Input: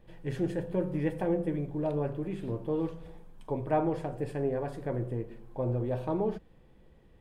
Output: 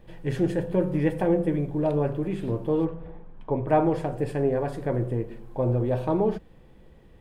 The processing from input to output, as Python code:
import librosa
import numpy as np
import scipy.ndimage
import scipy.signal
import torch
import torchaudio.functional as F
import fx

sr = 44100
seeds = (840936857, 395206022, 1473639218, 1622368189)

y = fx.lowpass(x, sr, hz=fx.line((2.84, 1500.0), (3.67, 2600.0)), slope=12, at=(2.84, 3.67), fade=0.02)
y = y * 10.0 ** (6.5 / 20.0)